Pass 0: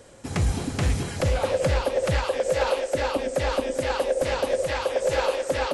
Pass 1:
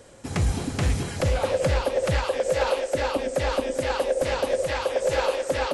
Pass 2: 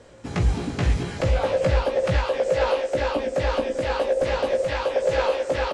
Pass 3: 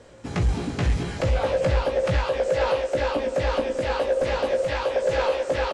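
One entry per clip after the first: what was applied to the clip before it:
nothing audible
air absorption 85 m; doubler 17 ms -4 dB
soft clip -12 dBFS, distortion -23 dB; echo 0.626 s -19 dB

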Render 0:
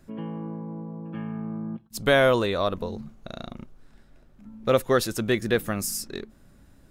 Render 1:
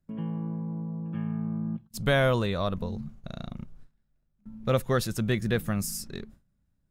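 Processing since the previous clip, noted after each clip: gate with hold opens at -40 dBFS; resonant low shelf 230 Hz +7 dB, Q 1.5; gain -4.5 dB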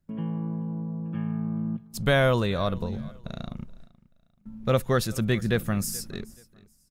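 feedback echo 0.429 s, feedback 30%, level -22 dB; gain +2 dB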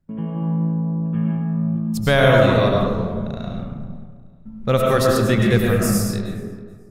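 digital reverb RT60 1.7 s, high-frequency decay 0.35×, pre-delay 60 ms, DRR -1.5 dB; mismatched tape noise reduction decoder only; gain +4.5 dB

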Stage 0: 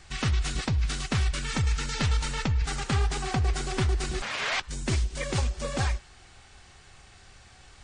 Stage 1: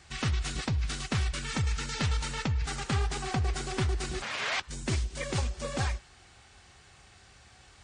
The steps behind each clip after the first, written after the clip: HPF 51 Hz; gain -2.5 dB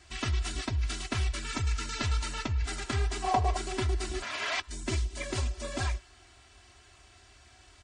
comb 3 ms, depth 94%; spectral gain 3.25–3.57, 420–1200 Hz +12 dB; gain -3.5 dB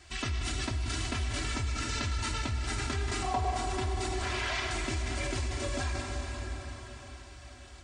plate-style reverb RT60 4.9 s, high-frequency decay 0.8×, DRR 2 dB; in parallel at 0 dB: negative-ratio compressor -34 dBFS; on the sum: gain -6.5 dB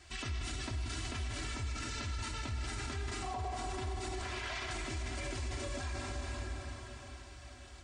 limiter -28 dBFS, peak gain reduction 9 dB; gain -2.5 dB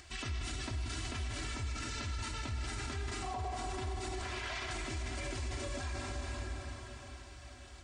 upward compressor, threshold -52 dBFS

